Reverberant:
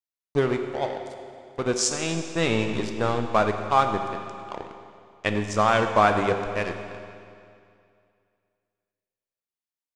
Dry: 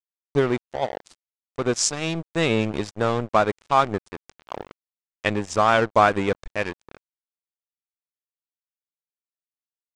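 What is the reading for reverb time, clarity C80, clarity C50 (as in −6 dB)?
2.4 s, 7.5 dB, 6.5 dB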